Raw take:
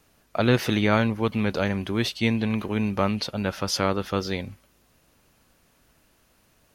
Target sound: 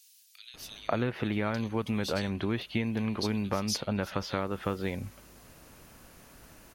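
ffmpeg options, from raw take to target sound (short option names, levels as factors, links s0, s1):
-filter_complex "[0:a]acompressor=threshold=0.0141:ratio=6,acrossover=split=3400[s0][s1];[s0]adelay=540[s2];[s2][s1]amix=inputs=2:normalize=0,volume=2.82"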